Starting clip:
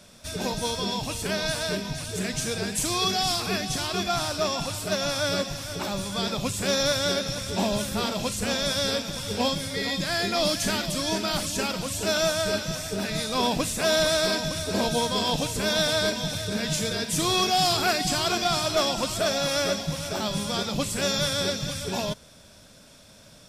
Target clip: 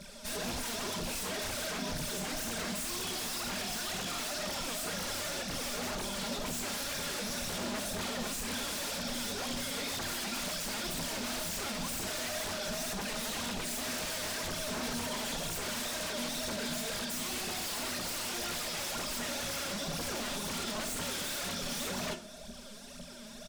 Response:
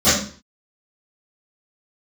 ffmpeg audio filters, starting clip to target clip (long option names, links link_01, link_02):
-filter_complex "[0:a]aecho=1:1:5:1,alimiter=limit=-20.5dB:level=0:latency=1:release=190,aphaser=in_gain=1:out_gain=1:delay=5:decay=0.78:speed=2:type=triangular,aeval=exprs='0.0422*(abs(mod(val(0)/0.0422+3,4)-2)-1)':channel_layout=same,asplit=2[link_01][link_02];[1:a]atrim=start_sample=2205,asetrate=52920,aresample=44100[link_03];[link_02][link_03]afir=irnorm=-1:irlink=0,volume=-28.5dB[link_04];[link_01][link_04]amix=inputs=2:normalize=0,volume=-5.5dB"